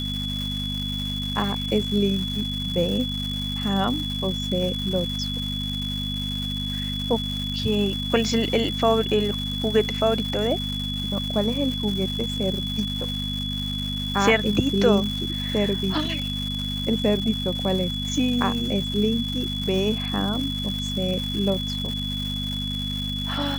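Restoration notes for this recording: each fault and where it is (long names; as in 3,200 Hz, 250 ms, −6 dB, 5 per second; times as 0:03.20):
surface crackle 450 per second −30 dBFS
mains hum 50 Hz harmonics 5 −30 dBFS
whistle 3,400 Hz −29 dBFS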